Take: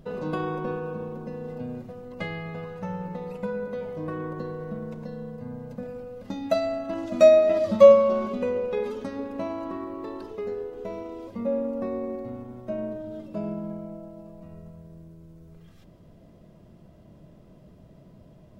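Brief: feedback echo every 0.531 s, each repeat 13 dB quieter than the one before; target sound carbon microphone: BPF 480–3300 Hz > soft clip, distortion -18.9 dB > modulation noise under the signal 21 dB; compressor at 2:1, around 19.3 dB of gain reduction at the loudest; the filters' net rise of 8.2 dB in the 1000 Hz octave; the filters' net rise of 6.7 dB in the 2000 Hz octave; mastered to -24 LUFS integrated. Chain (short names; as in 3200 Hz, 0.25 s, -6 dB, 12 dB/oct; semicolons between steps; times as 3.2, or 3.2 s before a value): bell 1000 Hz +8.5 dB; bell 2000 Hz +6.5 dB; compressor 2:1, threshold -43 dBFS; BPF 480–3300 Hz; feedback echo 0.531 s, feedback 22%, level -13 dB; soft clip -25 dBFS; modulation noise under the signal 21 dB; gain +16.5 dB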